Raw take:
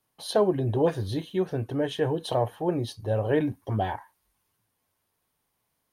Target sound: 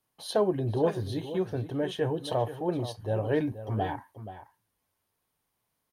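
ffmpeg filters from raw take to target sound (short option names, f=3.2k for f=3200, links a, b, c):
-filter_complex "[0:a]asplit=2[a][b];[b]adelay=478.1,volume=-12dB,highshelf=f=4k:g=-10.8[c];[a][c]amix=inputs=2:normalize=0,volume=-3dB"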